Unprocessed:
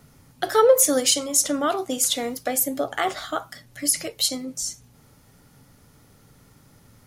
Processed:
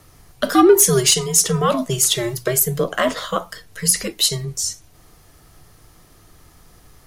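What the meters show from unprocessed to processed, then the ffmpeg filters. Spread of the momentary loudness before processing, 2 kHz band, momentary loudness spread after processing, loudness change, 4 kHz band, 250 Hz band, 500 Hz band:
14 LU, +5.0 dB, 13 LU, +5.0 dB, +5.0 dB, +7.5 dB, +3.5 dB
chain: -af "acontrast=74,afreqshift=-120,bandreject=f=60:t=h:w=6,bandreject=f=120:t=h:w=6,bandreject=f=180:t=h:w=6,volume=-1dB"

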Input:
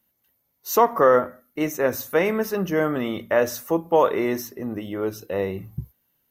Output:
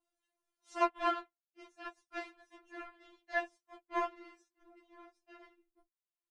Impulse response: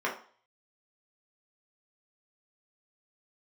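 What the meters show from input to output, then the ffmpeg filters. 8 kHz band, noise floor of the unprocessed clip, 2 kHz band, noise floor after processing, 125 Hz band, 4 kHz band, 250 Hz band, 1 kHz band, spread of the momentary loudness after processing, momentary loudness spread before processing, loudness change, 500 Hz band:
under -25 dB, -72 dBFS, -12.5 dB, under -85 dBFS, under -40 dB, -13.0 dB, -21.5 dB, -13.5 dB, 19 LU, 14 LU, -15.0 dB, -22.0 dB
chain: -filter_complex "[0:a]acrossover=split=530[a][b];[a]asoftclip=type=hard:threshold=-30.5dB[c];[b]adynamicequalizer=threshold=0.0141:dfrequency=2900:dqfactor=0.8:tfrequency=2900:tqfactor=0.8:attack=5:release=100:ratio=0.375:range=2.5:mode=cutabove:tftype=bell[d];[c][d]amix=inputs=2:normalize=0,asplit=2[e][f];[f]adelay=17,volume=-3dB[g];[e][g]amix=inputs=2:normalize=0,aeval=exprs='0.631*(cos(1*acos(clip(val(0)/0.631,-1,1)))-cos(1*PI/2))+0.126*(cos(3*acos(clip(val(0)/0.631,-1,1)))-cos(3*PI/2))+0.0126*(cos(5*acos(clip(val(0)/0.631,-1,1)))-cos(5*PI/2))+0.0447*(cos(7*acos(clip(val(0)/0.631,-1,1)))-cos(7*PI/2))':c=same,acompressor=mode=upward:threshold=-36dB:ratio=2.5,afftfilt=real='hypot(re,im)*cos(2*PI*random(0))':imag='hypot(re,im)*sin(2*PI*random(1))':win_size=512:overlap=0.75,tremolo=f=120:d=1,aresample=22050,aresample=44100,equalizer=f=960:w=0.68:g=4,afftfilt=real='re*4*eq(mod(b,16),0)':imag='im*4*eq(mod(b,16),0)':win_size=2048:overlap=0.75"

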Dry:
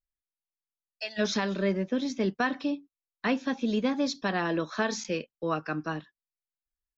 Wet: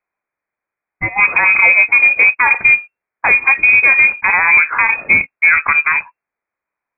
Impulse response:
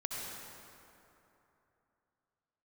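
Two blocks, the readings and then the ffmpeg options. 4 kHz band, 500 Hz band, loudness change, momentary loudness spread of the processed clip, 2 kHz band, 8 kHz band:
under -25 dB, -1.0 dB, +20.5 dB, 6 LU, +27.5 dB, n/a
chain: -af "highpass=f=190:w=0.5412,highpass=f=190:w=1.3066,aresample=16000,acrusher=bits=4:mode=log:mix=0:aa=0.000001,aresample=44100,lowpass=f=2.3k:t=q:w=0.5098,lowpass=f=2.3k:t=q:w=0.6013,lowpass=f=2.3k:t=q:w=0.9,lowpass=f=2.3k:t=q:w=2.563,afreqshift=-2700,alimiter=level_in=22.5dB:limit=-1dB:release=50:level=0:latency=1,volume=-1dB"

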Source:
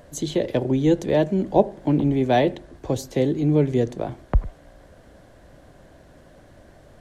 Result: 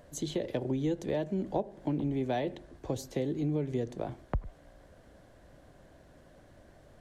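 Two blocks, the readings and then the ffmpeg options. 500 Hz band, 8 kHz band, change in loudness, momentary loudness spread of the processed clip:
-12.5 dB, -8.0 dB, -12.0 dB, 7 LU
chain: -af "acompressor=threshold=-20dB:ratio=5,volume=-7.5dB"

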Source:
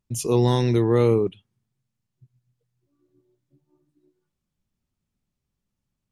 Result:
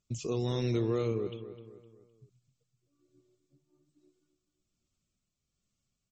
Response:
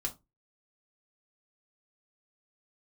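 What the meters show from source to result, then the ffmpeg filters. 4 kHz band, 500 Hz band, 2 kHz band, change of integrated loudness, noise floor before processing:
-9.0 dB, -11.5 dB, -10.5 dB, -12.0 dB, -82 dBFS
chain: -filter_complex "[0:a]aemphasis=mode=production:type=75kf,acrossover=split=3200[a][b];[b]acompressor=threshold=-36dB:ratio=4:attack=1:release=60[c];[a][c]amix=inputs=2:normalize=0,superequalizer=9b=0.398:11b=0.562,acompressor=threshold=-28dB:ratio=2,tremolo=f=1.2:d=0.34,asplit=2[d][e];[e]adelay=256,lowpass=f=2.9k:p=1,volume=-12dB,asplit=2[f][g];[g]adelay=256,lowpass=f=2.9k:p=1,volume=0.43,asplit=2[h][i];[i]adelay=256,lowpass=f=2.9k:p=1,volume=0.43,asplit=2[j][k];[k]adelay=256,lowpass=f=2.9k:p=1,volume=0.43[l];[f][h][j][l]amix=inputs=4:normalize=0[m];[d][m]amix=inputs=2:normalize=0,volume=-2.5dB" -ar 44100 -c:a libmp3lame -b:a 32k

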